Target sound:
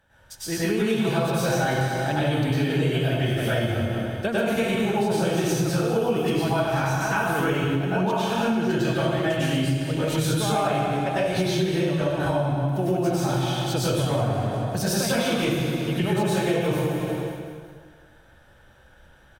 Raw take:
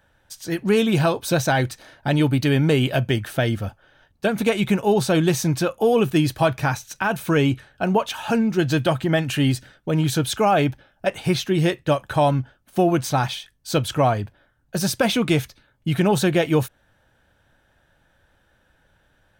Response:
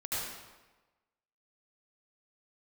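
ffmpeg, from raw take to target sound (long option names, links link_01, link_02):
-filter_complex "[0:a]asettb=1/sr,asplit=3[link_01][link_02][link_03];[link_01]atrim=end=11.564[link_04];[link_02]atrim=start=11.56:end=14.18,asetpts=PTS-STARTPTS,afade=type=in:duration=0.004:curve=qsin,afade=type=out:start_time=2.616:duration=0.004:curve=qsin,acrossover=split=480[link_05][link_06];[link_06]acompressor=threshold=-25dB:ratio=6[link_07];[link_05][link_07]amix=inputs=2:normalize=0[link_08];[link_03]atrim=start=14.176[link_09];[link_04][link_08]acrossfade=duration=0.004:curve1=hsin:curve2=qsin[link_10];[link_10][link_09]acrossfade=duration=0.004:curve1=qsin:curve2=hsin,aecho=1:1:181|362|543|724|905:0.224|0.119|0.0629|0.0333|0.0177[link_11];[1:a]atrim=start_sample=2205,asetrate=32634,aresample=44100[link_12];[link_11][link_12]afir=irnorm=-1:irlink=0,acompressor=threshold=-21dB:ratio=5"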